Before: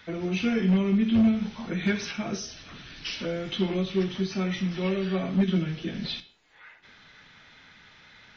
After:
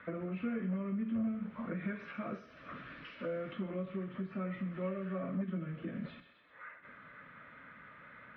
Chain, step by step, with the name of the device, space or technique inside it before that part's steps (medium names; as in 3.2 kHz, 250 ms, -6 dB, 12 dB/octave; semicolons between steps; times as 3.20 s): 1.93–3.53 s: tone controls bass -4 dB, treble +9 dB; feedback echo behind a high-pass 129 ms, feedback 53%, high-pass 1.5 kHz, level -14 dB; bass amplifier (compression 3:1, threshold -39 dBFS, peak gain reduction 15 dB; cabinet simulation 66–2000 Hz, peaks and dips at 87 Hz -9 dB, 260 Hz +3 dB, 380 Hz -5 dB, 560 Hz +8 dB, 810 Hz -10 dB, 1.2 kHz +8 dB)